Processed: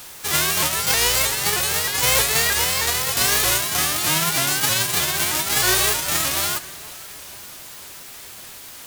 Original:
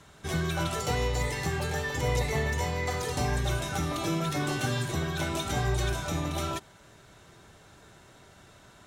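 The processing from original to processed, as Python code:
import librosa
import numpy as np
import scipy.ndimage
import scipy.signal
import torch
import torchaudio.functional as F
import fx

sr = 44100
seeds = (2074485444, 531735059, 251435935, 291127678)

p1 = fx.envelope_flatten(x, sr, power=0.1)
p2 = fx.dmg_noise_colour(p1, sr, seeds[0], colour='white', level_db=-49.0)
p3 = p2 + fx.echo_feedback(p2, sr, ms=480, feedback_pct=58, wet_db=-20.5, dry=0)
p4 = fx.vibrato_shape(p3, sr, shape='saw_up', rate_hz=3.2, depth_cents=160.0)
y = p4 * 10.0 ** (9.0 / 20.0)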